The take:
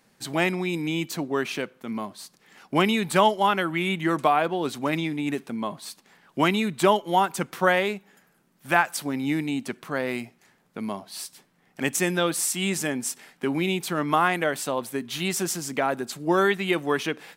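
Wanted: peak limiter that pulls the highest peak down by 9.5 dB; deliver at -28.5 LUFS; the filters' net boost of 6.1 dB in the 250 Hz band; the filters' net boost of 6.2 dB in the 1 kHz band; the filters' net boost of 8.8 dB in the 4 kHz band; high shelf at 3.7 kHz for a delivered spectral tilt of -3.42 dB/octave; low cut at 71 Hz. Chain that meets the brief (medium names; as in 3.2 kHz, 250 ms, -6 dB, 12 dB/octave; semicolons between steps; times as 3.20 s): high-pass 71 Hz; peaking EQ 250 Hz +8 dB; peaking EQ 1 kHz +6.5 dB; treble shelf 3.7 kHz +6 dB; peaking EQ 4 kHz +7.5 dB; trim -6.5 dB; peak limiter -15.5 dBFS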